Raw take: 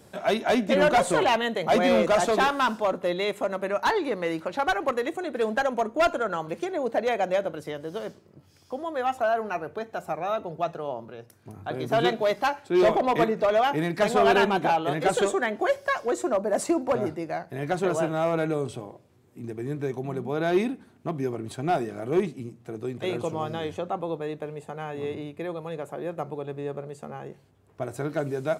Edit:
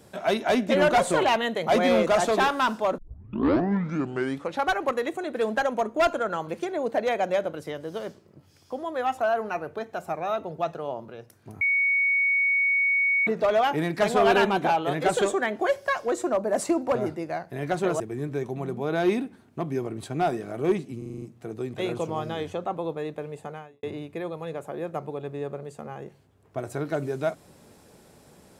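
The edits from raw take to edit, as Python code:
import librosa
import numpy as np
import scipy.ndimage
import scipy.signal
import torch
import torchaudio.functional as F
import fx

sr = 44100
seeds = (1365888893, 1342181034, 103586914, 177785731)

y = fx.edit(x, sr, fx.tape_start(start_s=2.98, length_s=1.62),
    fx.bleep(start_s=11.61, length_s=1.66, hz=2230.0, db=-19.5),
    fx.cut(start_s=18.0, length_s=1.48),
    fx.stutter(start_s=22.46, slice_s=0.04, count=7),
    fx.fade_out_span(start_s=24.74, length_s=0.33, curve='qua'), tone=tone)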